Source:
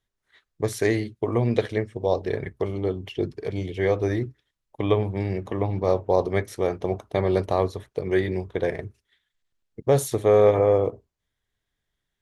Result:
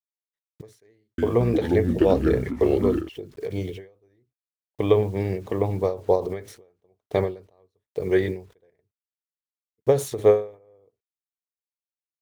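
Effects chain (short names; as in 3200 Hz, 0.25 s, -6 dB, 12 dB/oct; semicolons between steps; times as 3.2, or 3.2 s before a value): median filter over 3 samples; bell 450 Hz +6.5 dB 0.38 oct; bit-crush 9-bit; 0.96–3.09 echoes that change speed 0.221 s, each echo -5 st, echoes 2; ending taper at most 150 dB/s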